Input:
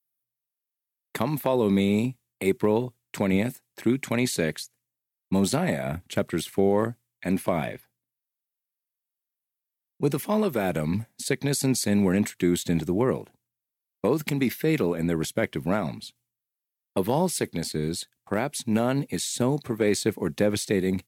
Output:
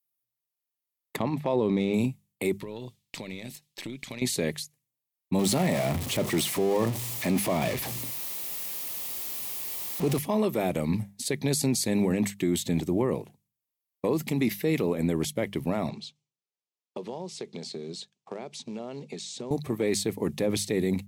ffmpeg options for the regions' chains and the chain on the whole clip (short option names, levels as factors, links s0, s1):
-filter_complex "[0:a]asettb=1/sr,asplit=3[s0][s1][s2];[s0]atrim=end=1.164[s3];[s1]atrim=start=1.16:end=1.94,asetpts=PTS-STARTPTS,afade=t=in:d=0.004:c=qsin,afade=t=out:st=0.776:d=0.004:c=qsin,highshelf=f=8100:g=3.5,adynamicsmooth=sensitivity=1.5:basefreq=3200[s4];[s2]atrim=start=1.936[s5];[s3][s4]acrossfade=d=0.004:c1=hsin:c2=qsin[s6];[s6][s5]acrossfade=d=0.004:c1=qsin:c2=hsin,asettb=1/sr,asplit=3[s7][s8][s9];[s7]atrim=end=2.614[s10];[s8]atrim=start=2.61:end=4.22,asetpts=PTS-STARTPTS,afade=t=in:d=0.004:c=qsin,afade=t=out:st=1.606:d=0.004:c=qsin,equalizer=f=3900:t=o:w=1.7:g=13,acompressor=threshold=0.0316:ratio=16:attack=3.2:release=140:knee=1:detection=peak,aeval=exprs='(tanh(11.2*val(0)+0.55)-tanh(0.55))/11.2':c=same[s11];[s9]atrim=start=4.216[s12];[s10][s11]acrossfade=d=0.004:c1=hsin:c2=qsin[s13];[s13][s12]acrossfade=d=0.004:c1=qsin:c2=hsin,asettb=1/sr,asplit=3[s14][s15][s16];[s14]atrim=end=5.394[s17];[s15]atrim=start=5.39:end=10.19,asetpts=PTS-STARTPTS,afade=t=in:d=0.004:c=qsin,afade=t=out:st=4.796:d=0.004:c=qsin,aeval=exprs='val(0)+0.5*0.0447*sgn(val(0))':c=same,highpass=61[s18];[s16]atrim=start=10.186[s19];[s17][s18]acrossfade=d=0.004:c1=hsin:c2=qsin[s20];[s20][s19]acrossfade=d=0.004:c1=qsin:c2=hsin,asettb=1/sr,asplit=3[s21][s22][s23];[s21]atrim=end=15.894[s24];[s22]atrim=start=15.89:end=19.51,asetpts=PTS-STARTPTS,afade=t=in:d=0.004:c=qsin,afade=t=out:st=3.616:d=0.004:c=qsin,acompressor=threshold=0.0251:ratio=6:attack=3.2:release=140:knee=1:detection=peak,acrusher=bits=6:mode=log:mix=0:aa=0.000001,highpass=f=150:w=0.5412,highpass=f=150:w=1.3066,equalizer=f=290:t=q:w=4:g=-7,equalizer=f=410:t=q:w=4:g=6,equalizer=f=1900:t=q:w=4:g=-5,lowpass=f=6800:w=0.5412,lowpass=f=6800:w=1.3066[s25];[s23]atrim=start=19.506[s26];[s24][s25]acrossfade=d=0.004:c1=hsin:c2=qsin[s27];[s27][s26]acrossfade=d=0.004:c1=qsin:c2=hsin,equalizer=f=1500:t=o:w=0.3:g=-11,bandreject=f=50:t=h:w=6,bandreject=f=100:t=h:w=6,bandreject=f=150:t=h:w=6,bandreject=f=200:t=h:w=6,alimiter=limit=0.15:level=0:latency=1:release=20"